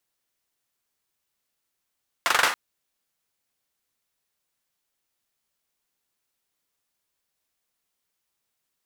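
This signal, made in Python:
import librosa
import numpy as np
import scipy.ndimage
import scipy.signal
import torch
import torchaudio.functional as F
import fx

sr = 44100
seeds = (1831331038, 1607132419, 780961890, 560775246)

y = fx.drum_clap(sr, seeds[0], length_s=0.28, bursts=5, spacing_ms=43, hz=1300.0, decay_s=0.38)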